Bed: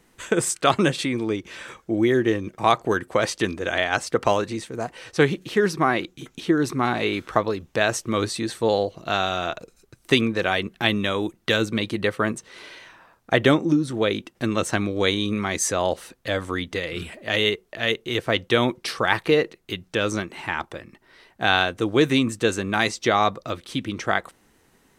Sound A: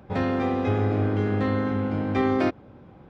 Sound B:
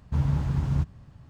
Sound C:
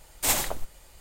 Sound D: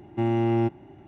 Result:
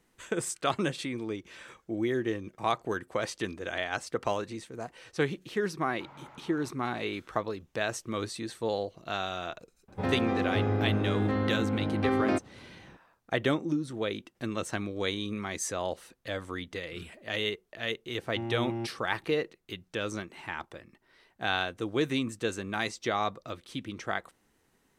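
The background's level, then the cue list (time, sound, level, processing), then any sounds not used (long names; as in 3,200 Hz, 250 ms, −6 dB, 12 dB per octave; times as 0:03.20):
bed −10 dB
0:05.87: mix in B −15 dB + loudspeaker in its box 400–4,400 Hz, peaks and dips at 560 Hz +6 dB, 880 Hz +9 dB, 1,300 Hz +10 dB, 2,200 Hz +9 dB
0:09.88: mix in A −4.5 dB
0:18.18: mix in D −11.5 dB
not used: C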